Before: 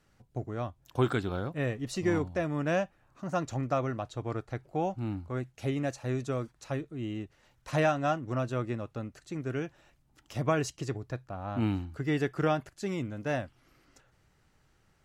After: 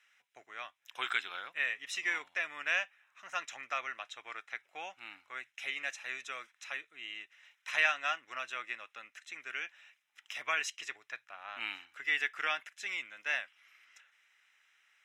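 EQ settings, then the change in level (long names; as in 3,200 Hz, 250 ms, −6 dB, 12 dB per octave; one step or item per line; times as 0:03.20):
high-pass with resonance 2,200 Hz, resonance Q 2.1
Butterworth band-reject 4,500 Hz, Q 6.2
high-shelf EQ 4,500 Hz −11 dB
+6.0 dB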